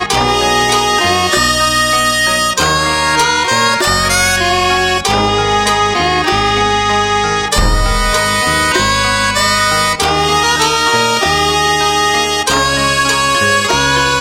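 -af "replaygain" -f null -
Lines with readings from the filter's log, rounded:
track_gain = -5.2 dB
track_peak = 0.492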